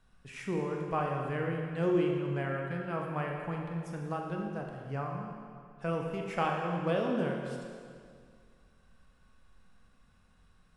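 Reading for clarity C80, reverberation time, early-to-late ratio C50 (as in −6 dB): 3.0 dB, 2.1 s, 2.0 dB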